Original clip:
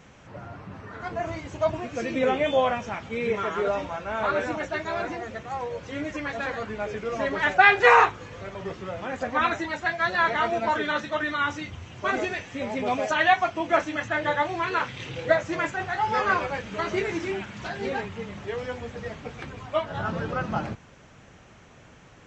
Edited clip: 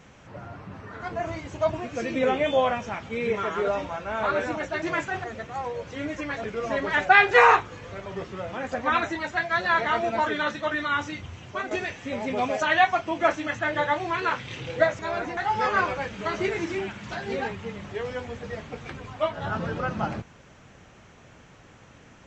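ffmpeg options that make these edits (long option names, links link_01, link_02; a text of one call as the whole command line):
ffmpeg -i in.wav -filter_complex "[0:a]asplit=7[link_01][link_02][link_03][link_04][link_05][link_06][link_07];[link_01]atrim=end=4.822[link_08];[link_02]atrim=start=15.478:end=15.902[link_09];[link_03]atrim=start=5.198:end=6.402[link_10];[link_04]atrim=start=6.928:end=12.2,asetpts=PTS-STARTPTS,afade=type=out:start_time=5.002:duration=0.27:silence=0.251189[link_11];[link_05]atrim=start=12.2:end=15.482,asetpts=PTS-STARTPTS,afade=type=in:duration=0.004:curve=hsin:silence=0.251189[link_12];[link_06]atrim=start=4.818:end=5.202[link_13];[link_07]atrim=start=15.898[link_14];[link_08][link_09]acrossfade=duration=0.004:curve1=hsin:curve2=hsin[link_15];[link_15][link_10]acrossfade=duration=0.004:curve1=hsin:curve2=hsin[link_16];[link_11][link_12]concat=n=2:v=0:a=1[link_17];[link_16][link_17]acrossfade=duration=0.004:curve1=hsin:curve2=hsin[link_18];[link_18][link_13]acrossfade=duration=0.004:curve1=hsin:curve2=hsin[link_19];[link_19][link_14]acrossfade=duration=0.004:curve1=hsin:curve2=hsin" out.wav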